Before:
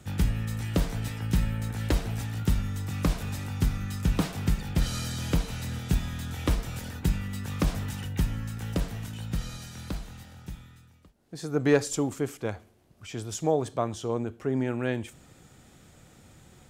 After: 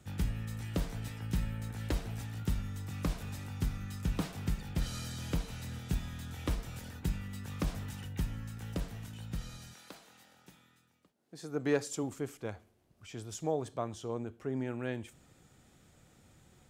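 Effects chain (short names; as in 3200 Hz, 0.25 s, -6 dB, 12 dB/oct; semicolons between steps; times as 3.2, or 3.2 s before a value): 9.73–12.02 HPF 460 Hz -> 110 Hz 12 dB/oct; gain -8 dB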